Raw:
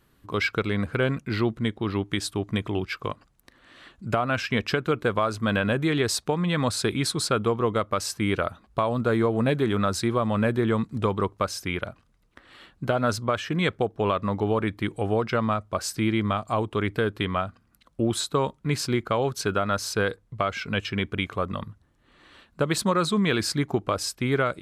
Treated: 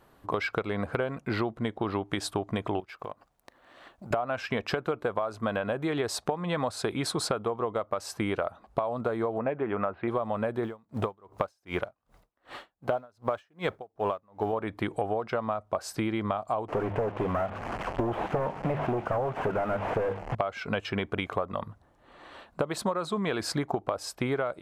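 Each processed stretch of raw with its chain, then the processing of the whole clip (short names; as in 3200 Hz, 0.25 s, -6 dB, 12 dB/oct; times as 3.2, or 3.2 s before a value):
2.8–4.11 G.711 law mismatch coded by A + compressor, threshold -41 dBFS
9.38–10.08 steep low-pass 2800 Hz 48 dB/oct + low shelf 170 Hz -6 dB
10.63–14.53 G.711 law mismatch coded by mu + dB-linear tremolo 2.6 Hz, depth 38 dB
16.68–20.35 delta modulation 16 kbps, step -40.5 dBFS + notches 50/100/150/200 Hz + sample leveller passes 3
whole clip: bell 720 Hz +14.5 dB 1.6 oct; compressor 12:1, threshold -24 dBFS; gain -1.5 dB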